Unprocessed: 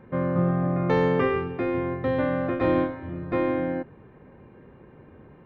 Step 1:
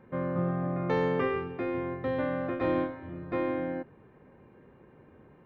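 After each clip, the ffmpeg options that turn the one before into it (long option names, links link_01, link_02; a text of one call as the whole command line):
ffmpeg -i in.wav -af "lowshelf=frequency=150:gain=-4.5,volume=-5dB" out.wav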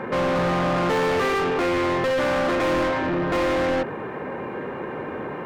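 ffmpeg -i in.wav -filter_complex "[0:a]asplit=2[link_01][link_02];[link_02]highpass=frequency=720:poles=1,volume=39dB,asoftclip=type=tanh:threshold=-15dB[link_03];[link_01][link_03]amix=inputs=2:normalize=0,lowpass=frequency=2000:poles=1,volume=-6dB" out.wav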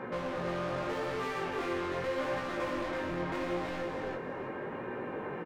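ffmpeg -i in.wav -af "acompressor=threshold=-26dB:ratio=6,aecho=1:1:330|660|990:0.668|0.154|0.0354,flanger=delay=16:depth=7.6:speed=0.81,volume=-6dB" out.wav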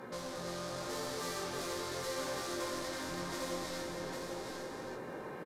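ffmpeg -i in.wav -af "aexciter=amount=6.7:drive=6:freq=3900,aecho=1:1:803:0.668,aresample=32000,aresample=44100,volume=-7dB" out.wav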